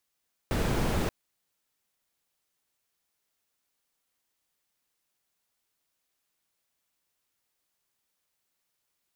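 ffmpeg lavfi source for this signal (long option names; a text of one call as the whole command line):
ffmpeg -f lavfi -i "anoisesrc=color=brown:amplitude=0.209:duration=0.58:sample_rate=44100:seed=1" out.wav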